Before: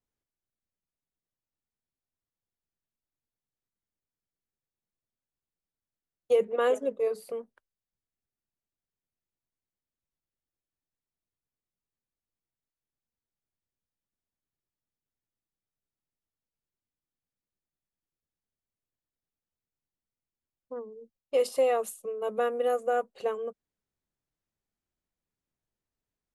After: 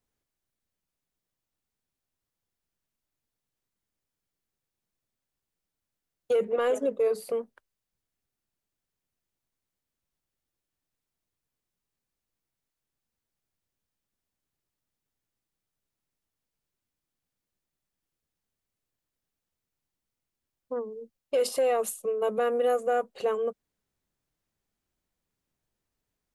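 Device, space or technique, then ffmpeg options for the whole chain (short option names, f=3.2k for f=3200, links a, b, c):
soft clipper into limiter: -af "asoftclip=type=tanh:threshold=-15.5dB,alimiter=level_in=0.5dB:limit=-24dB:level=0:latency=1,volume=-0.5dB,volume=6dB"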